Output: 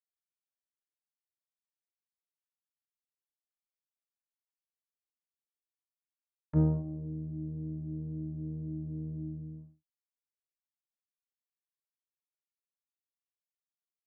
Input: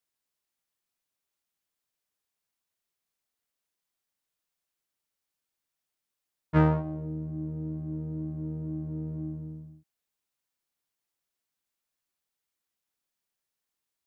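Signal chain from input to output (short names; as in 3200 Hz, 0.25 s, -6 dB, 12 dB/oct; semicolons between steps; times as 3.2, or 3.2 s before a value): treble ducked by the level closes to 380 Hz, closed at -35.5 dBFS; expander -40 dBFS; gain -3 dB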